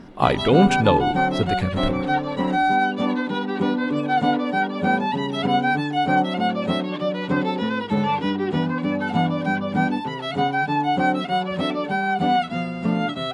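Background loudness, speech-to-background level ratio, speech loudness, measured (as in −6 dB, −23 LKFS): −22.5 LKFS, 1.0 dB, −21.5 LKFS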